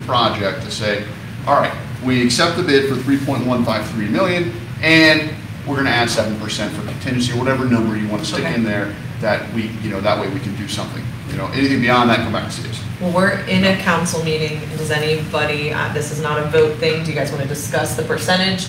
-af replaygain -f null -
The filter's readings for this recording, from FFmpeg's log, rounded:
track_gain = -2.9 dB
track_peak = 0.536